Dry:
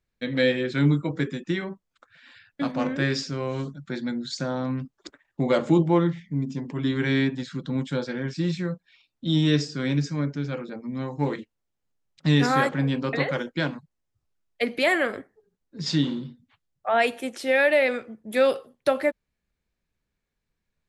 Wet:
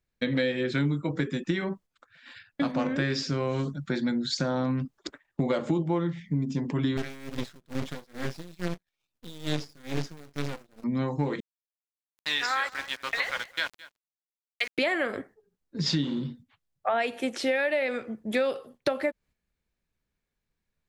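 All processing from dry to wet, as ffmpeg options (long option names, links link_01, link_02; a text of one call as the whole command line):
ffmpeg -i in.wav -filter_complex "[0:a]asettb=1/sr,asplit=3[link_01][link_02][link_03];[link_01]atrim=end=6.974[link_04];[link_02]atrim=start=6.97:end=10.84,asetpts=PTS-STARTPTS,afade=type=in:duration=0.004:curve=qsin,afade=type=out:start_time=3.866:duration=0.004:curve=qsin,aeval=exprs='max(val(0),0)':channel_layout=same,acrusher=bits=2:mode=log:mix=0:aa=0.000001,aeval=exprs='val(0)*pow(10,-25*(0.5-0.5*cos(2*PI*2.3*n/s))/20)':channel_layout=same[link_05];[link_03]atrim=start=10.836[link_06];[link_04][link_05]acrossfade=duration=0.004:curve1=hsin:curve2=qsin[link_07];[link_07][link_06]acrossfade=duration=0.004:curve1=qsin:curve2=hsin,asettb=1/sr,asplit=3[link_08][link_09][link_10];[link_08]atrim=end=11.404[link_11];[link_09]atrim=start=11.4:end=14.78,asetpts=PTS-STARTPTS,afade=type=in:duration=0.004:curve=qsin,afade=type=out:start_time=3.376:duration=0.004:curve=qsin,highpass=1300,aeval=exprs='val(0)*gte(abs(val(0)),0.0112)':channel_layout=same,aecho=1:1:217:0.0841,atrim=end_sample=149058[link_12];[link_10]atrim=start=14.776[link_13];[link_11][link_12]acrossfade=duration=0.004:curve1=hsin:curve2=qsin[link_14];[link_14][link_13]acrossfade=duration=0.004:curve1=qsin:curve2=hsin,acrossover=split=7100[link_15][link_16];[link_16]acompressor=threshold=-57dB:ratio=4:attack=1:release=60[link_17];[link_15][link_17]amix=inputs=2:normalize=0,agate=range=-7dB:threshold=-51dB:ratio=16:detection=peak,acompressor=threshold=-29dB:ratio=6,volume=5dB" out.wav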